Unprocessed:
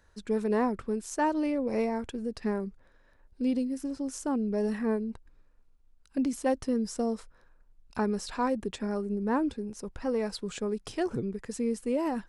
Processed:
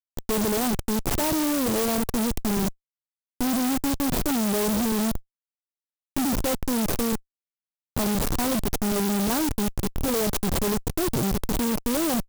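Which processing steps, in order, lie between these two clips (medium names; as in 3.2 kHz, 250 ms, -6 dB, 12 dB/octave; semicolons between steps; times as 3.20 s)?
Schmitt trigger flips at -35.5 dBFS; sampling jitter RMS 0.13 ms; trim +8 dB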